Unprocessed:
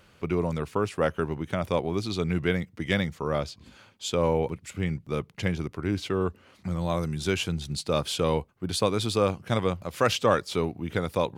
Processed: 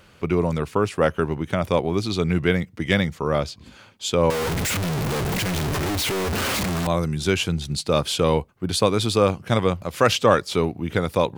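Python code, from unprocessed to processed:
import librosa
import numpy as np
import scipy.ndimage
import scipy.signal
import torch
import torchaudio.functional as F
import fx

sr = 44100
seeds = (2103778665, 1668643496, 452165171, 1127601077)

y = fx.clip_1bit(x, sr, at=(4.3, 6.87))
y = y * librosa.db_to_amplitude(5.5)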